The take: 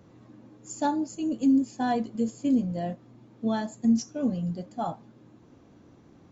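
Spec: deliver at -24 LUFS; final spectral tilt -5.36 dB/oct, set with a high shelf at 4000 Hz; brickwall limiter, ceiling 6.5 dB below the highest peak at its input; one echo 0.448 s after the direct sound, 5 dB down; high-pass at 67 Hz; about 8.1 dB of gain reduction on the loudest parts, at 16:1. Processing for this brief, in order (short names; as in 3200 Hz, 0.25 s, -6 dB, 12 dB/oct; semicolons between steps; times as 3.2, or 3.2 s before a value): HPF 67 Hz; high shelf 4000 Hz +6.5 dB; compressor 16:1, threshold -25 dBFS; limiter -25 dBFS; echo 0.448 s -5 dB; gain +9.5 dB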